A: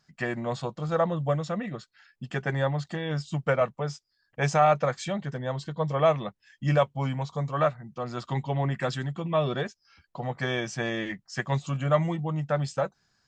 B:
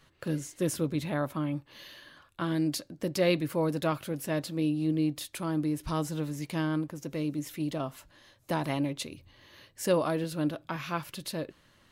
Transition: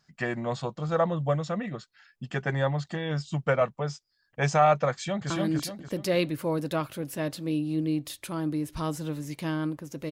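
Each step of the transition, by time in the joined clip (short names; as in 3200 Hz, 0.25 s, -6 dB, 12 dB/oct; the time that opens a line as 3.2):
A
4.92–5.3 echo throw 0.29 s, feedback 35%, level -1 dB
5.3 switch to B from 2.41 s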